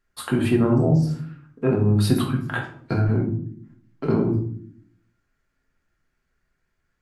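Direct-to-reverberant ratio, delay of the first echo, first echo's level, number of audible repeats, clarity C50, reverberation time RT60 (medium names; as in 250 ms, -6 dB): -0.5 dB, no echo, no echo, no echo, 7.0 dB, 0.60 s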